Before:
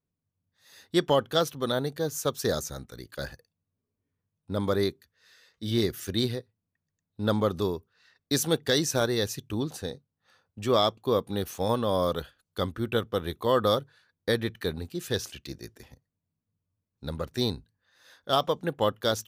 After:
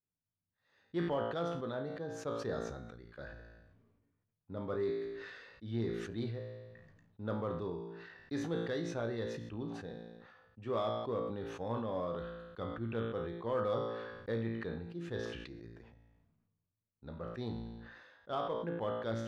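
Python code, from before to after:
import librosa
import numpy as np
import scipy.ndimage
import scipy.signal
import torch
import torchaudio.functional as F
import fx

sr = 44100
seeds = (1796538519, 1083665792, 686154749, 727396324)

p1 = scipy.signal.sosfilt(scipy.signal.butter(2, 2000.0, 'lowpass', fs=sr, output='sos'), x)
p2 = fx.comb_fb(p1, sr, f0_hz=57.0, decay_s=0.49, harmonics='all', damping=0.0, mix_pct=80)
p3 = np.clip(p2, -10.0 ** (-29.0 / 20.0), 10.0 ** (-29.0 / 20.0))
p4 = p2 + (p3 * librosa.db_to_amplitude(-9.5))
p5 = fx.sustainer(p4, sr, db_per_s=38.0)
y = p5 * librosa.db_to_amplitude(-6.5)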